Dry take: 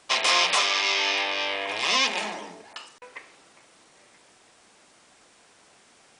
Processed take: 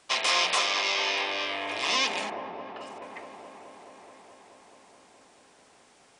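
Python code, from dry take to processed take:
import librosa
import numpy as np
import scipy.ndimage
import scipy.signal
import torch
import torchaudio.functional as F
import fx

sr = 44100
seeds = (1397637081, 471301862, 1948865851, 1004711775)

p1 = fx.lowpass(x, sr, hz=1900.0, slope=12, at=(2.29, 2.8), fade=0.02)
p2 = p1 + fx.echo_wet_lowpass(p1, sr, ms=214, feedback_pct=82, hz=870.0, wet_db=-6.0, dry=0)
y = F.gain(torch.from_numpy(p2), -3.5).numpy()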